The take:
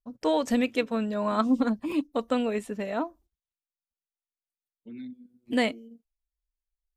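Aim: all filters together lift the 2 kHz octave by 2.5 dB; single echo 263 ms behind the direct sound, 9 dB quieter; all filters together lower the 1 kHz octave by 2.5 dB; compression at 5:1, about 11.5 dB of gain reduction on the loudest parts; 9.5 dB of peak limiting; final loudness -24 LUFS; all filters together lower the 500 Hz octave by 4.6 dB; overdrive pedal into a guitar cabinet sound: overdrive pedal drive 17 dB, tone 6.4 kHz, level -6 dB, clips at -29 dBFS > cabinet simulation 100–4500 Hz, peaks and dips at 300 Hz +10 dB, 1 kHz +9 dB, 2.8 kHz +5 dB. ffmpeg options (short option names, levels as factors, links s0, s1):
-filter_complex "[0:a]equalizer=f=500:t=o:g=-5,equalizer=f=1000:t=o:g=-8.5,equalizer=f=2000:t=o:g=3,acompressor=threshold=0.02:ratio=5,alimiter=level_in=2.51:limit=0.0631:level=0:latency=1,volume=0.398,aecho=1:1:263:0.355,asplit=2[s0][s1];[s1]highpass=f=720:p=1,volume=7.08,asoftclip=type=tanh:threshold=0.0355[s2];[s0][s2]amix=inputs=2:normalize=0,lowpass=f=6400:p=1,volume=0.501,highpass=100,equalizer=f=300:t=q:w=4:g=10,equalizer=f=1000:t=q:w=4:g=9,equalizer=f=2800:t=q:w=4:g=5,lowpass=f=4500:w=0.5412,lowpass=f=4500:w=1.3066,volume=3.55"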